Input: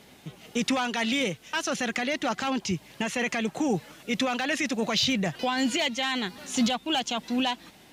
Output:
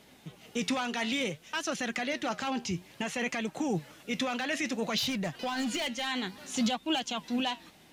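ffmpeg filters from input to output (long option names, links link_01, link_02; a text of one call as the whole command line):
ffmpeg -i in.wav -filter_complex "[0:a]asettb=1/sr,asplit=3[link_01][link_02][link_03];[link_01]atrim=end=4.984[link_04];[link_02]atrim=start=4.98:end=6.07,asetpts=PTS-STARTPTS,afade=type=in:duration=0.004:curve=qsin,afade=type=out:start_time=1.086:duration=0.004:curve=qsin,asoftclip=type=hard:threshold=-23dB[link_05];[link_03]atrim=start=6.066[link_06];[link_04][link_05]acrossfade=duration=0.004:curve1=hsin:curve2=qsin[link_07];[link_07][link_06]acrossfade=duration=0.004:curve1=qsin:curve2=hsin,flanger=delay=3.1:depth=9.6:regen=76:speed=0.58:shape=sinusoidal" out.wav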